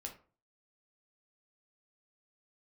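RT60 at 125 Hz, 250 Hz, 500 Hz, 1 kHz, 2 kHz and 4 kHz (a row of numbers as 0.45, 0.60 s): 0.50, 0.45, 0.40, 0.40, 0.30, 0.25 s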